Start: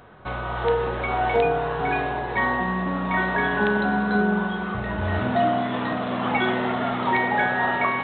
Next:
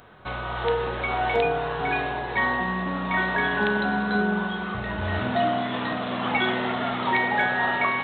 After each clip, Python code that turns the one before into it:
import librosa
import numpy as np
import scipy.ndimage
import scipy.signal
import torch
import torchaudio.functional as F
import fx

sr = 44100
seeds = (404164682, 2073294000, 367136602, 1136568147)

y = fx.high_shelf(x, sr, hz=2700.0, db=10.0)
y = F.gain(torch.from_numpy(y), -3.0).numpy()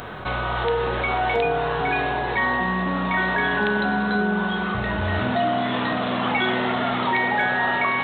y = fx.env_flatten(x, sr, amount_pct=50)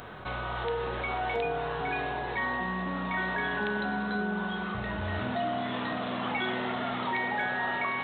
y = x + 10.0 ** (-23.5 / 20.0) * np.pad(x, (int(559 * sr / 1000.0), 0))[:len(x)]
y = F.gain(torch.from_numpy(y), -9.0).numpy()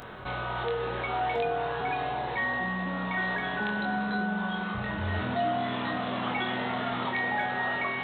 y = fx.doubler(x, sr, ms=23.0, db=-4.5)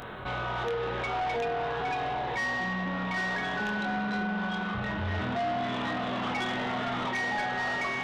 y = 10.0 ** (-28.5 / 20.0) * np.tanh(x / 10.0 ** (-28.5 / 20.0))
y = F.gain(torch.from_numpy(y), 2.5).numpy()